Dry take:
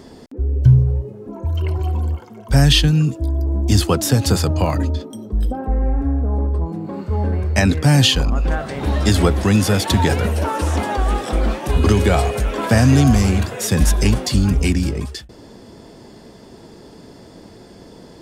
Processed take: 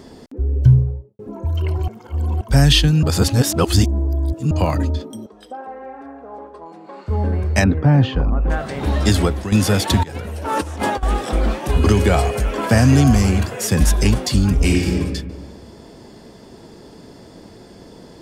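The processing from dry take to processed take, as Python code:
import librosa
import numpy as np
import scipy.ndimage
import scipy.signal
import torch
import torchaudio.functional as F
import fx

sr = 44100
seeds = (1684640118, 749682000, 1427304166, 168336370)

y = fx.studio_fade_out(x, sr, start_s=0.64, length_s=0.55)
y = fx.bandpass_edges(y, sr, low_hz=640.0, high_hz=7400.0, at=(5.26, 7.08))
y = fx.lowpass(y, sr, hz=1300.0, slope=12, at=(7.64, 8.5))
y = fx.over_compress(y, sr, threshold_db=-23.0, ratio=-0.5, at=(10.03, 11.03))
y = fx.notch(y, sr, hz=3700.0, q=12.0, at=(11.73, 13.81))
y = fx.reverb_throw(y, sr, start_s=14.55, length_s=0.4, rt60_s=1.4, drr_db=-1.0)
y = fx.edit(y, sr, fx.reverse_span(start_s=1.88, length_s=0.53),
    fx.reverse_span(start_s=3.03, length_s=1.48),
    fx.fade_out_to(start_s=9.11, length_s=0.41, floor_db=-12.0), tone=tone)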